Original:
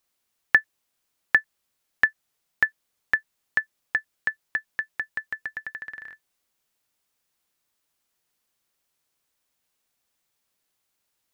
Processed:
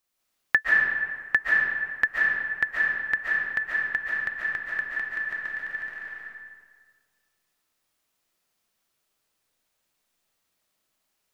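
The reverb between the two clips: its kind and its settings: algorithmic reverb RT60 1.7 s, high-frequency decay 0.65×, pre-delay 100 ms, DRR -5 dB; trim -3.5 dB

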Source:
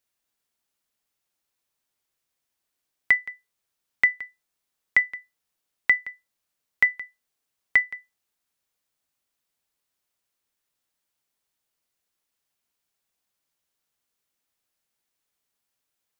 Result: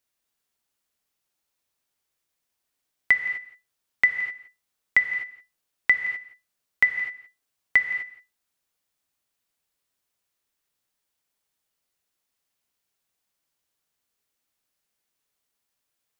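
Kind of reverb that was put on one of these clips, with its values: gated-style reverb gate 280 ms flat, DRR 7 dB

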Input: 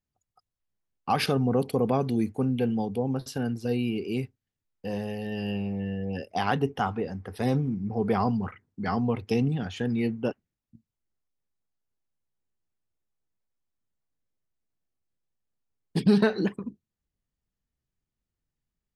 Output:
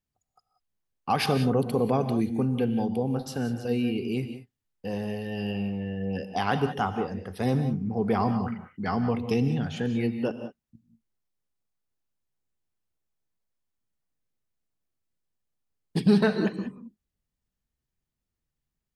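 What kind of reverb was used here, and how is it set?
gated-style reverb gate 210 ms rising, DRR 9 dB

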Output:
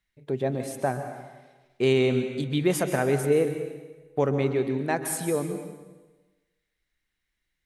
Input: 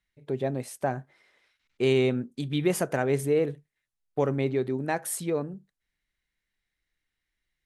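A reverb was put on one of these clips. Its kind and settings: plate-style reverb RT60 1.2 s, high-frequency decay 0.95×, pre-delay 115 ms, DRR 7.5 dB; trim +1.5 dB

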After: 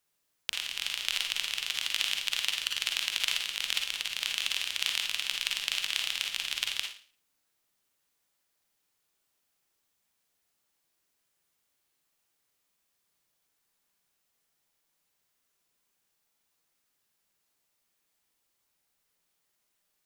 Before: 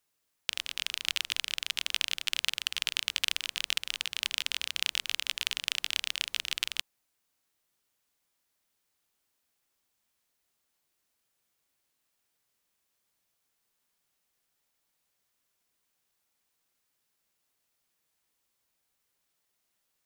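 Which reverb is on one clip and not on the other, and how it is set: Schroeder reverb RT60 0.42 s, DRR 2 dB; trim -1 dB

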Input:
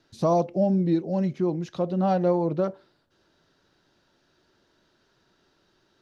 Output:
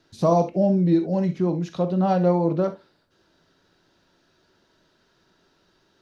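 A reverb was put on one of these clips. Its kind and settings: gated-style reverb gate 90 ms flat, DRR 7.5 dB; trim +2 dB

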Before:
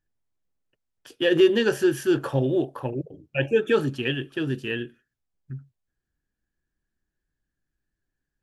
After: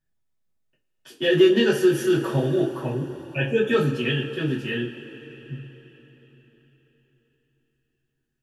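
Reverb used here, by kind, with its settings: two-slope reverb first 0.24 s, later 4.4 s, from -22 dB, DRR -5 dB; trim -4.5 dB

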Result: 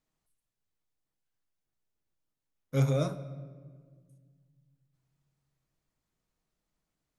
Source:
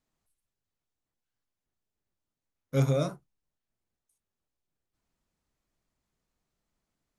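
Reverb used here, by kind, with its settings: simulated room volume 2200 m³, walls mixed, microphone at 0.56 m; trim -2 dB

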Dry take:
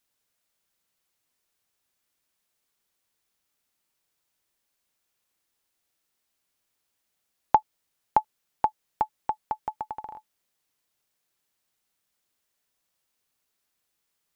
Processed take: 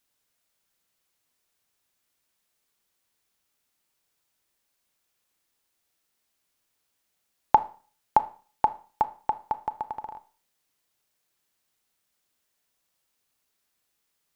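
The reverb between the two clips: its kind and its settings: Schroeder reverb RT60 0.4 s, combs from 25 ms, DRR 13 dB; trim +1.5 dB

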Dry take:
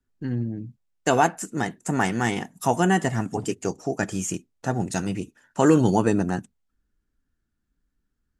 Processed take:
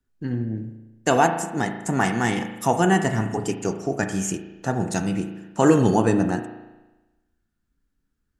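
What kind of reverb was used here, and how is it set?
spring tank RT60 1.1 s, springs 36 ms, chirp 55 ms, DRR 7 dB; trim +1 dB

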